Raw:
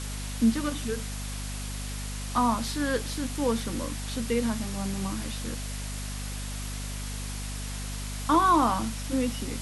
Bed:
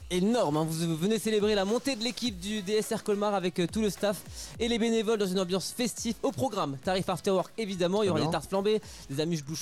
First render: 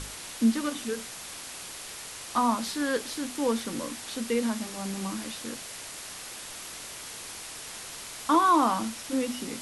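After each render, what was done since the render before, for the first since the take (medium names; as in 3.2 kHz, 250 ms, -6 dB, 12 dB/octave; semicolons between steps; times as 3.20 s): hum notches 50/100/150/200/250 Hz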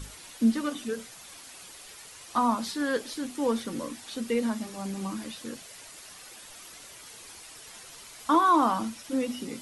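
noise reduction 9 dB, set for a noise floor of -41 dBFS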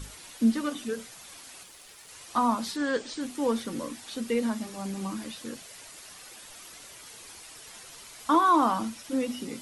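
1.63–2.09 s: power-law waveshaper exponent 1.4; 2.76–3.21 s: brick-wall FIR low-pass 8.9 kHz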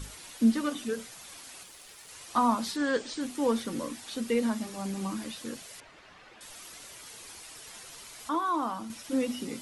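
5.80–6.41 s: low-pass 2.4 kHz; 8.29–8.90 s: gain -8 dB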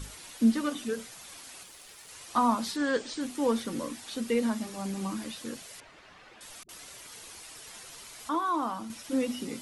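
6.63–7.31 s: phase dispersion highs, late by 59 ms, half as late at 320 Hz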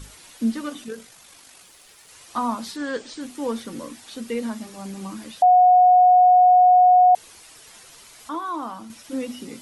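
0.84–1.64 s: AM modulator 49 Hz, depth 25%; 5.42–7.15 s: bleep 728 Hz -10 dBFS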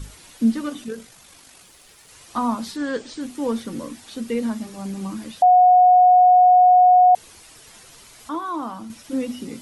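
bass shelf 300 Hz +7 dB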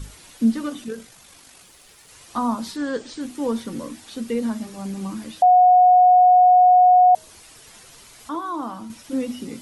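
dynamic bell 2.3 kHz, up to -5 dB, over -39 dBFS, Q 1.5; de-hum 316.4 Hz, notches 19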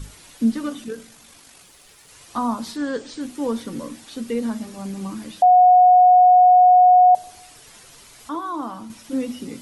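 simulated room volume 3900 m³, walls furnished, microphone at 0.31 m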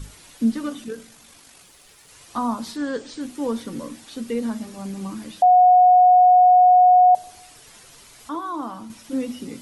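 trim -1 dB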